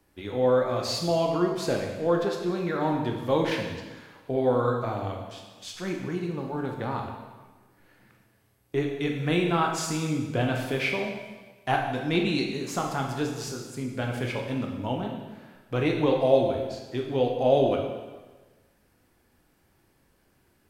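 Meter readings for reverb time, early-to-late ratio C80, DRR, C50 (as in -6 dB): 1.3 s, 6.0 dB, 1.0 dB, 4.0 dB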